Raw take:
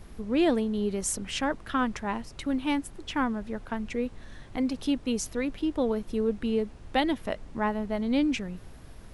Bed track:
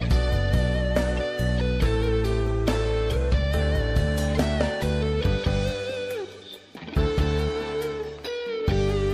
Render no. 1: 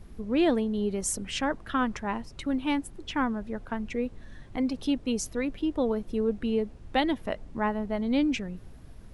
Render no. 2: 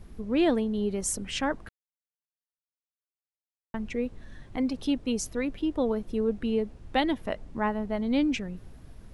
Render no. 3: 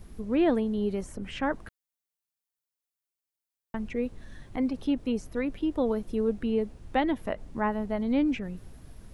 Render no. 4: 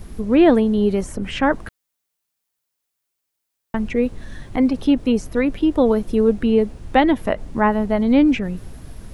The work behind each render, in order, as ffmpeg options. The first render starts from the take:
-af "afftdn=nr=6:nf=-48"
-filter_complex "[0:a]asplit=3[s0][s1][s2];[s0]atrim=end=1.69,asetpts=PTS-STARTPTS,afade=t=out:st=1.686:d=0.004:c=hsin[s3];[s1]atrim=start=1.69:end=3.74,asetpts=PTS-STARTPTS,volume=0[s4];[s2]atrim=start=3.74,asetpts=PTS-STARTPTS,afade=t=in:d=0.004:c=hsin[s5];[s3][s4][s5]concat=n=3:v=0:a=1"
-filter_complex "[0:a]highshelf=f=7200:g=8,acrossover=split=2500[s0][s1];[s1]acompressor=threshold=0.00224:ratio=4:attack=1:release=60[s2];[s0][s2]amix=inputs=2:normalize=0"
-af "volume=3.55"

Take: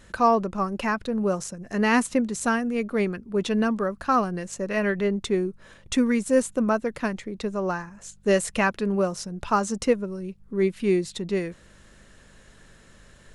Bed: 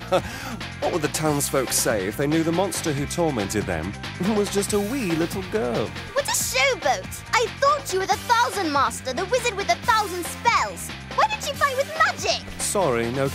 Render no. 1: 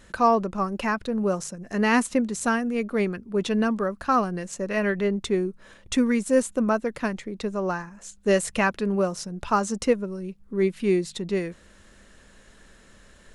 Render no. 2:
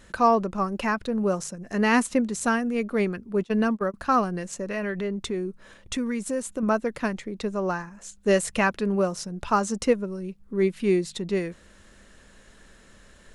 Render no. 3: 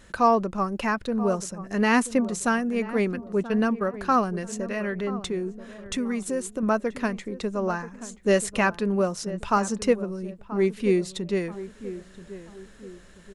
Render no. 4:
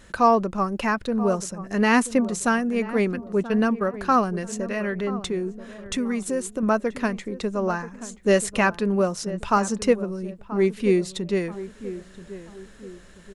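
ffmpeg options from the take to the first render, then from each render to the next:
-af "bandreject=f=50:t=h:w=4,bandreject=f=100:t=h:w=4,bandreject=f=150:t=h:w=4"
-filter_complex "[0:a]asettb=1/sr,asplit=3[s0][s1][s2];[s0]atrim=end=3.444[s3];[s1]atrim=start=3.44:end=3.94,asetpts=PTS-STARTPTS,afade=t=in:d=0.004:c=qsin,afade=t=out:st=0.496:d=0.004:c=qsin,agate=range=0.0562:threshold=0.0447:ratio=16:release=100:detection=peak[s4];[s2]atrim=start=3.936[s5];[s3][s4]acrossfade=d=0.004:c1=hsin:c2=qsin[s6];[s6][s5]acrossfade=d=0.004:c1=qsin:c2=hsin,asettb=1/sr,asplit=3[s7][s8][s9];[s7]atrim=end=4.544[s10];[s8]atrim=start=4.54:end=6.63,asetpts=PTS-STARTPTS,afade=t=in:d=0.004:c=qsin,afade=t=out:st=2.086:d=0.004:c=qsin,acompressor=threshold=0.0447:ratio=2.5:attack=3.2:release=140:knee=1:detection=peak[s11];[s9]atrim=start=6.626[s12];[s10][s11]acrossfade=d=0.004:c1=hsin:c2=qsin[s13];[s13][s12]acrossfade=d=0.004:c1=qsin:c2=hsin"
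-filter_complex "[0:a]asplit=2[s0][s1];[s1]adelay=982,lowpass=f=1100:p=1,volume=0.211,asplit=2[s2][s3];[s3]adelay=982,lowpass=f=1100:p=1,volume=0.42,asplit=2[s4][s5];[s5]adelay=982,lowpass=f=1100:p=1,volume=0.42,asplit=2[s6][s7];[s7]adelay=982,lowpass=f=1100:p=1,volume=0.42[s8];[s0][s2][s4][s6][s8]amix=inputs=5:normalize=0"
-af "volume=1.26"

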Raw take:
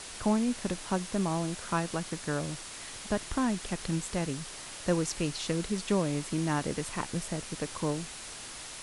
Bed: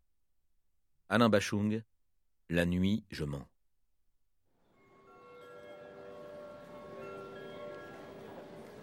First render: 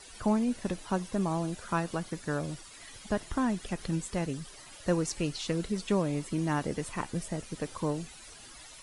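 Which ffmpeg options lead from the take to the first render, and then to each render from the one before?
-af "afftdn=nr=13:nf=-44"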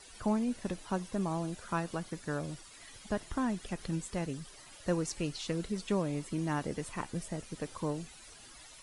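-af "volume=0.668"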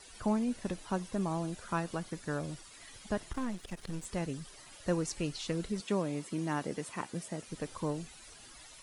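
-filter_complex "[0:a]asettb=1/sr,asplit=3[s0][s1][s2];[s0]atrim=end=3.334[s3];[s1]atrim=start=3.33:end=4.05,asetpts=PTS-STARTPTS,afade=t=in:d=0.004:c=qsin,afade=t=out:st=0.716:d=0.004:c=qsin,aeval=exprs='if(lt(val(0),0),0.251*val(0),val(0))':c=same[s4];[s2]atrim=start=4.046[s5];[s3][s4]acrossfade=d=0.004:c1=hsin:c2=qsin[s6];[s6][s5]acrossfade=d=0.004:c1=qsin:c2=hsin,asettb=1/sr,asplit=3[s7][s8][s9];[s7]atrim=end=5.804[s10];[s8]atrim=start=5.8:end=7.48,asetpts=PTS-STARTPTS,afade=t=in:d=0.004:c=qsin,afade=t=out:st=1.676:d=0.004:c=qsin,highpass=150[s11];[s9]atrim=start=7.476[s12];[s10][s11]acrossfade=d=0.004:c1=hsin:c2=qsin[s13];[s13][s12]acrossfade=d=0.004:c1=qsin:c2=hsin"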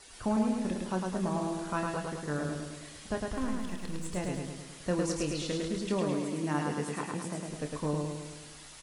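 -filter_complex "[0:a]asplit=2[s0][s1];[s1]adelay=27,volume=0.398[s2];[s0][s2]amix=inputs=2:normalize=0,asplit=2[s3][s4];[s4]aecho=0:1:106|212|318|424|530|636|742|848:0.708|0.404|0.23|0.131|0.0747|0.0426|0.0243|0.0138[s5];[s3][s5]amix=inputs=2:normalize=0"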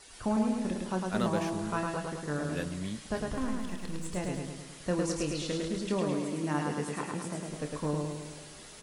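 -filter_complex "[1:a]volume=0.473[s0];[0:a][s0]amix=inputs=2:normalize=0"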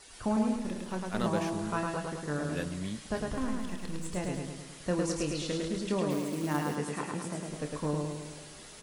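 -filter_complex "[0:a]asettb=1/sr,asplit=3[s0][s1][s2];[s0]atrim=end=0.564[s3];[s1]atrim=start=0.56:end=1.24,asetpts=PTS-STARTPTS,afade=t=in:d=0.004:c=qsin,afade=t=out:st=0.676:d=0.004:c=qsin,aeval=exprs='if(lt(val(0),0),0.447*val(0),val(0))':c=same[s4];[s2]atrim=start=1.236[s5];[s3][s4]acrossfade=d=0.004:c1=hsin:c2=qsin[s6];[s6][s5]acrossfade=d=0.004:c1=qsin:c2=hsin,asettb=1/sr,asplit=3[s7][s8][s9];[s7]atrim=end=6.104[s10];[s8]atrim=start=6.1:end=6.76,asetpts=PTS-STARTPTS,afade=t=in:d=0.004:c=qsin,afade=t=out:st=0.656:d=0.004:c=qsin,acrusher=bits=4:mode=log:mix=0:aa=0.000001[s11];[s9]atrim=start=6.756[s12];[s10][s11]acrossfade=d=0.004:c1=hsin:c2=qsin[s13];[s13][s12]acrossfade=d=0.004:c1=qsin:c2=hsin"

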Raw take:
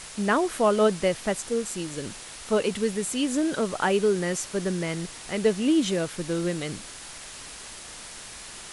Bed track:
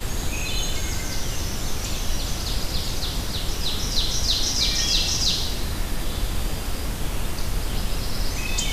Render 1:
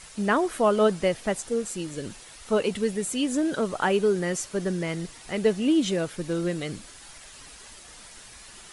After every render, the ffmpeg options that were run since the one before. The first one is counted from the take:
-af "afftdn=nr=8:nf=-42"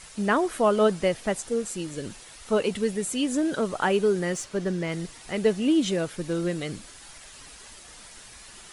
-filter_complex "[0:a]asettb=1/sr,asplit=3[s0][s1][s2];[s0]atrim=end=4.344[s3];[s1]atrim=start=4.34:end=4.92,asetpts=PTS-STARTPTS,afade=t=in:d=0.004:c=qsin,afade=t=out:st=0.576:d=0.004:c=qsin,adynamicsmooth=sensitivity=5.5:basefreq=7900[s4];[s2]atrim=start=4.916[s5];[s3][s4]acrossfade=d=0.004:c1=hsin:c2=qsin[s6];[s6][s5]acrossfade=d=0.004:c1=qsin:c2=hsin"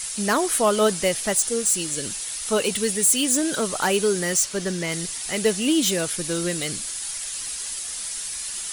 -filter_complex "[0:a]acrossover=split=1200[s0][s1];[s1]asoftclip=type=tanh:threshold=0.0266[s2];[s0][s2]amix=inputs=2:normalize=0,crystalizer=i=7:c=0"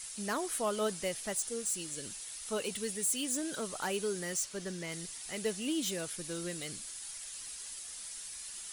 -af "volume=0.211"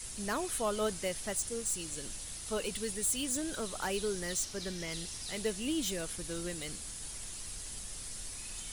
-filter_complex "[1:a]volume=0.0631[s0];[0:a][s0]amix=inputs=2:normalize=0"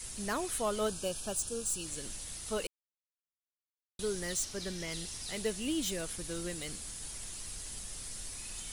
-filter_complex "[0:a]asettb=1/sr,asplit=3[s0][s1][s2];[s0]atrim=end=0.884[s3];[s1]atrim=start=0.88:end=1.86,asetpts=PTS-STARTPTS,afade=t=in:d=0.004:c=qsin,afade=t=out:st=0.976:d=0.004:c=qsin,asuperstop=centerf=2000:order=8:qfactor=3.2[s4];[s2]atrim=start=1.856[s5];[s3][s4]acrossfade=d=0.004:c1=hsin:c2=qsin[s6];[s6][s5]acrossfade=d=0.004:c1=qsin:c2=hsin,asplit=3[s7][s8][s9];[s7]atrim=end=2.67,asetpts=PTS-STARTPTS,afade=t=out:st=2.666:d=0.004:c=hsin[s10];[s8]atrim=start=2.67:end=3.99,asetpts=PTS-STARTPTS,volume=0[s11];[s9]atrim=start=3.99,asetpts=PTS-STARTPTS,afade=t=in:d=0.004:c=hsin[s12];[s10][s11][s12]concat=n=3:v=0:a=1"

